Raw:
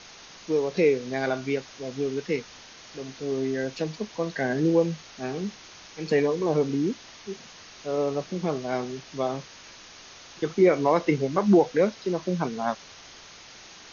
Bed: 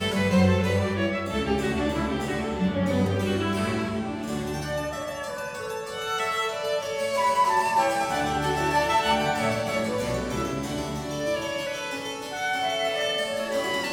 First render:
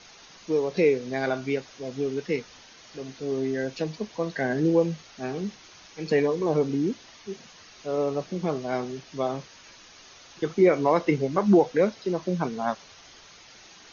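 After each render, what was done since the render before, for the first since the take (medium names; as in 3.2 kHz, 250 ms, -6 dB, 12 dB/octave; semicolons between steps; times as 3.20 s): noise reduction 6 dB, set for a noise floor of -48 dBFS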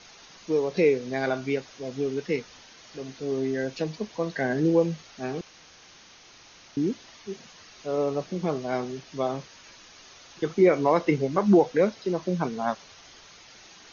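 5.41–6.77 s: room tone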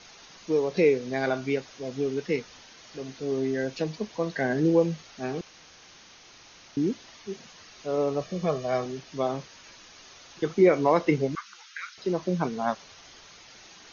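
8.21–8.86 s: comb 1.7 ms, depth 58%; 11.35–11.98 s: elliptic high-pass 1.3 kHz, stop band 50 dB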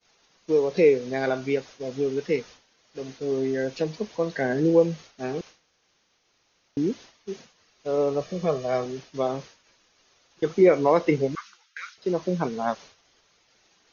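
expander -40 dBFS; peaking EQ 480 Hz +4 dB 0.66 oct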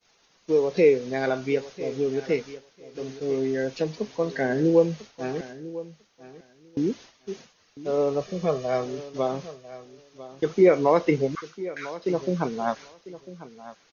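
feedback delay 998 ms, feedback 15%, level -16 dB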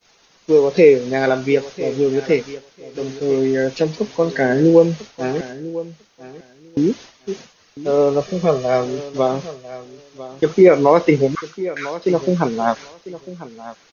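trim +8.5 dB; peak limiter -1 dBFS, peak gain reduction 2.5 dB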